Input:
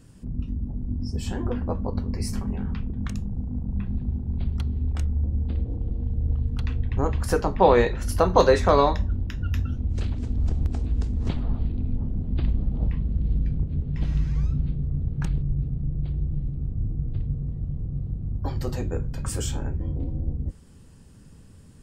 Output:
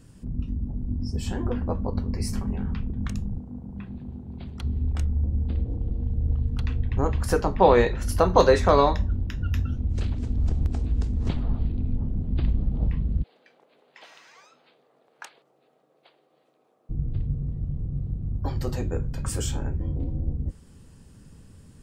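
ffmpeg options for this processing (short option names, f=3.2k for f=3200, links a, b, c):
-filter_complex "[0:a]asettb=1/sr,asplit=3[a][b][c];[a]atrim=end=3.384[d];[b]atrim=start=3.38:end=4.63,asetpts=PTS-STARTPTS,afade=t=in:d=0.004:c=qsin,afade=t=out:st=1.246:d=0.004:c=qsin,highpass=f=280:p=1[e];[c]atrim=start=4.626[f];[d][e]acrossfade=d=0.004:c1=hsin:c2=qsin[g];[g][f]acrossfade=d=0.004:c1=qsin:c2=hsin,asplit=3[h][i][j];[h]afade=t=out:st=13.22:d=0.02[k];[i]highpass=f=610:w=0.5412,highpass=f=610:w=1.3066,afade=t=in:st=13.22:d=0.02,afade=t=out:st=16.89:d=0.02[l];[j]afade=t=in:st=16.89:d=0.02[m];[k][l][m]amix=inputs=3:normalize=0"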